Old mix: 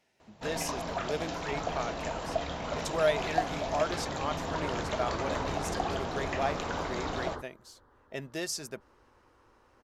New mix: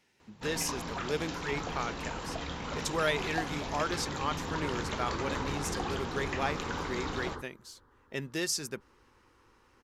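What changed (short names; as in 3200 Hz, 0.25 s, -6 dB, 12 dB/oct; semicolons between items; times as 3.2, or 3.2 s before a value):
speech +3.5 dB; master: add bell 650 Hz -13 dB 0.39 oct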